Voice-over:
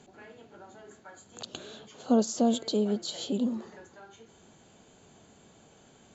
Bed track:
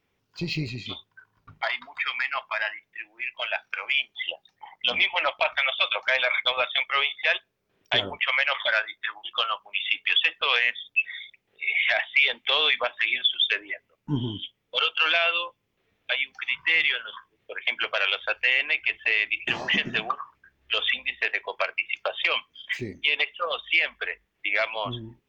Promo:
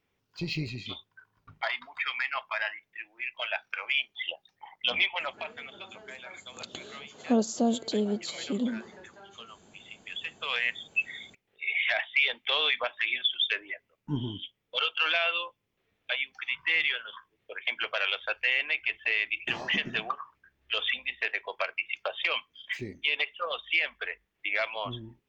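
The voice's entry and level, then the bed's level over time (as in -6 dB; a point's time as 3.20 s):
5.20 s, -1.0 dB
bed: 5.03 s -3.5 dB
5.74 s -22 dB
9.92 s -22 dB
10.70 s -4.5 dB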